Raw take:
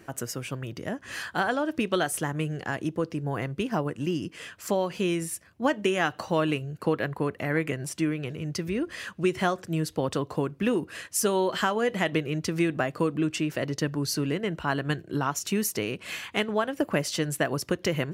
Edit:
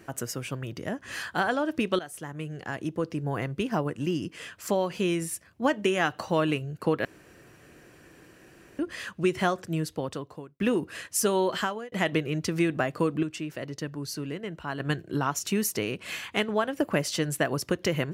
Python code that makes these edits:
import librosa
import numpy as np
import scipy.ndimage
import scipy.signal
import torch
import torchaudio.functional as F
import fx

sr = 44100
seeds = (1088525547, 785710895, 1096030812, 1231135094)

y = fx.edit(x, sr, fx.fade_in_from(start_s=1.99, length_s=1.19, floor_db=-15.0),
    fx.room_tone_fill(start_s=7.05, length_s=1.74),
    fx.fade_out_span(start_s=9.65, length_s=0.95),
    fx.fade_out_span(start_s=11.53, length_s=0.39),
    fx.clip_gain(start_s=13.23, length_s=1.57, db=-6.5), tone=tone)